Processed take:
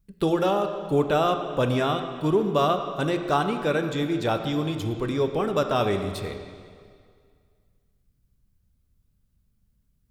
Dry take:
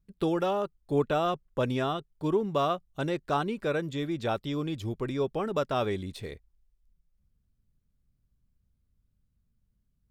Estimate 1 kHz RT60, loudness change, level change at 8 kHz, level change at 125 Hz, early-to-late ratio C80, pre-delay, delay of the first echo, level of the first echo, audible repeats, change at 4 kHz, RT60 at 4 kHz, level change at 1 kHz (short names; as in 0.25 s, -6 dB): 2.0 s, +5.5 dB, +8.0 dB, +5.5 dB, 8.5 dB, 8 ms, none, none, none, +6.5 dB, 1.9 s, +5.5 dB